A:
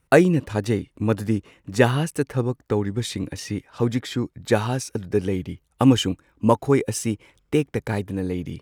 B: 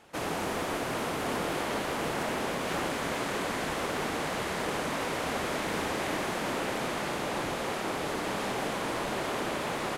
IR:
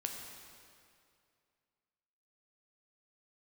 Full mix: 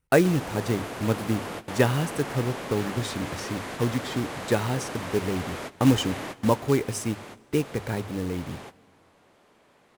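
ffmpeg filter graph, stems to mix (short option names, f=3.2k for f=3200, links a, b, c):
-filter_complex "[0:a]agate=range=-6dB:threshold=-41dB:ratio=16:detection=peak,lowshelf=f=87:g=5,acrusher=bits=4:mode=log:mix=0:aa=0.000001,volume=-5.5dB,asplit=3[a][b][c];[b]volume=-18.5dB[d];[1:a]asoftclip=type=tanh:threshold=-24.5dB,adelay=100,volume=-3dB,afade=t=out:st=6.37:d=0.23:silence=0.446684,asplit=2[e][f];[f]volume=-18.5dB[g];[c]apad=whole_len=444298[h];[e][h]sidechaingate=range=-33dB:threshold=-52dB:ratio=16:detection=peak[i];[2:a]atrim=start_sample=2205[j];[d][g]amix=inputs=2:normalize=0[k];[k][j]afir=irnorm=-1:irlink=0[l];[a][i][l]amix=inputs=3:normalize=0,bandreject=f=50:t=h:w=6,bandreject=f=100:t=h:w=6"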